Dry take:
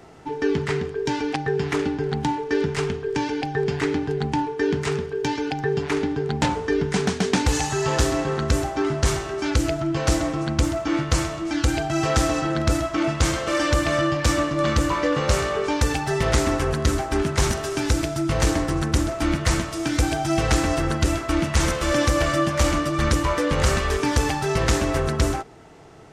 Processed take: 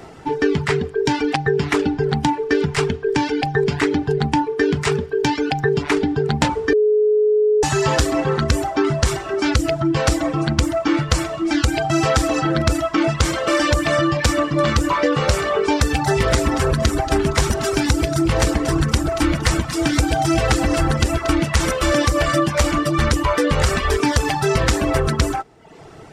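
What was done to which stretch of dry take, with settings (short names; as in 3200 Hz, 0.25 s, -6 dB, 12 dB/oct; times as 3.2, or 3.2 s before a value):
6.73–7.63 bleep 424 Hz -16 dBFS
15.56–21.33 echo with dull and thin repeats by turns 0.116 s, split 990 Hz, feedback 63%, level -7 dB
whole clip: reverb removal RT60 0.74 s; notch 6400 Hz, Q 19; compressor, threshold -21 dBFS; gain +8 dB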